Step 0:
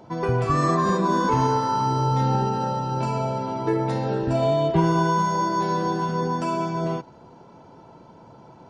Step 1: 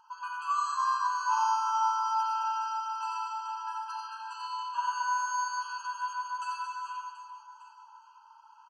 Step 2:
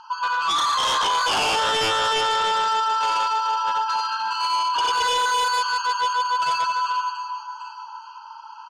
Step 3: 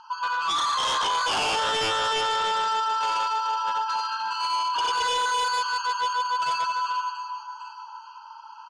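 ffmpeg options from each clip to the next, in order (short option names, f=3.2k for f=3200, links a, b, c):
-filter_complex "[0:a]asplit=2[a][b];[b]aecho=0:1:90|225|427.5|731.2|1187:0.631|0.398|0.251|0.158|0.1[c];[a][c]amix=inputs=2:normalize=0,afftfilt=real='re*eq(mod(floor(b*sr/1024/820),2),1)':imag='im*eq(mod(floor(b*sr/1024/820),2),1)':win_size=1024:overlap=0.75,volume=-5dB"
-af "acontrast=79,lowpass=f=4.4k:t=q:w=2,aeval=exprs='0.335*sin(PI/2*4.47*val(0)/0.335)':c=same,volume=-8.5dB"
-af "lowpass=f=11k:w=0.5412,lowpass=f=11k:w=1.3066,volume=-3.5dB"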